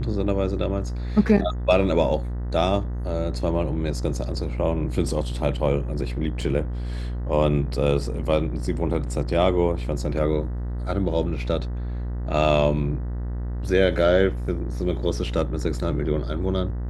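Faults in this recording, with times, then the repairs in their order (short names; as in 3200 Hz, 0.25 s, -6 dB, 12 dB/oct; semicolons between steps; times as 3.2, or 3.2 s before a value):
buzz 60 Hz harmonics 33 -28 dBFS
6.41 gap 4.2 ms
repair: de-hum 60 Hz, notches 33; interpolate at 6.41, 4.2 ms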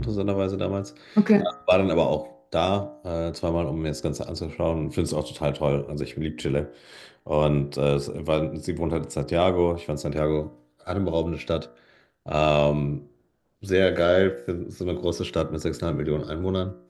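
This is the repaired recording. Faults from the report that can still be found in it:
none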